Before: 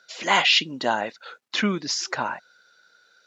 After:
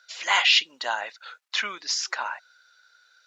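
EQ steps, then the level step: high-pass 990 Hz 12 dB/octave; 0.0 dB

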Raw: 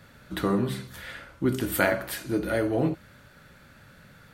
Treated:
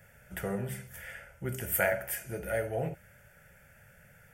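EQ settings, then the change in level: treble shelf 5.5 kHz +7 dB; static phaser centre 1.1 kHz, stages 6; -3.5 dB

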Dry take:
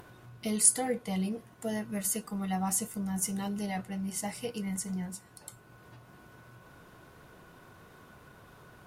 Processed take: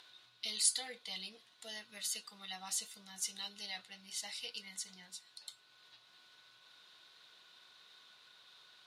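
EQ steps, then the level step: band-pass filter 3.9 kHz, Q 5; +12.5 dB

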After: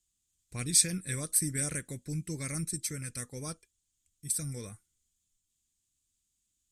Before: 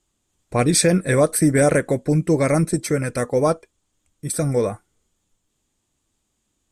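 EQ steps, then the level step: amplifier tone stack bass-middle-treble 6-0-2; treble shelf 2.8 kHz +11.5 dB; 0.0 dB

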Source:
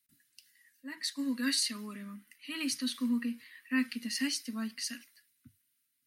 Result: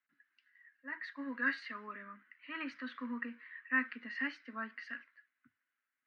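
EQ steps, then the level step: high-pass 470 Hz 12 dB/octave; four-pole ladder low-pass 1.9 kHz, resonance 45%; +10.0 dB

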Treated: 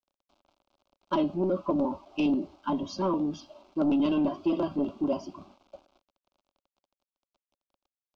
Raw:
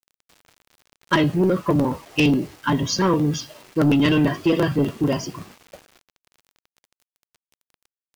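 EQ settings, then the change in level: distance through air 210 m; peaking EQ 550 Hz +14 dB 0.33 oct; static phaser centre 490 Hz, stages 6; -6.5 dB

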